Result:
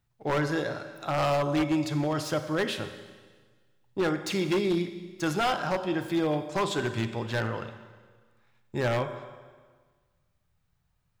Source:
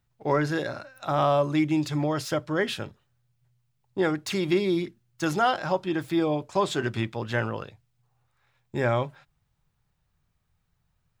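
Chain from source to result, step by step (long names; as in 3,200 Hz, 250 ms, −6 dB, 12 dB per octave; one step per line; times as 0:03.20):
four-comb reverb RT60 1.5 s, combs from 31 ms, DRR 9 dB
wave folding −18 dBFS
level −1.5 dB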